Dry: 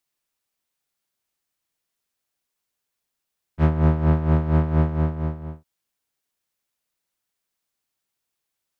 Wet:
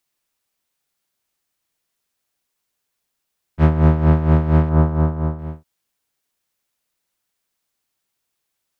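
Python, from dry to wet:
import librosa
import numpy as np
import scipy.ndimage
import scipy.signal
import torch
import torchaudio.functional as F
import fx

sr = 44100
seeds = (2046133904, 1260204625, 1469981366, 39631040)

y = fx.high_shelf_res(x, sr, hz=1700.0, db=-6.5, q=1.5, at=(4.69, 5.39))
y = y * 10.0 ** (4.5 / 20.0)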